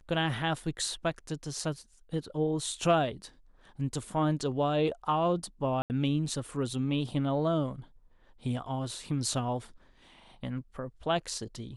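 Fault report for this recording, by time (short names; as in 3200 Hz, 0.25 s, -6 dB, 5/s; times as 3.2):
5.82–5.9 gap 79 ms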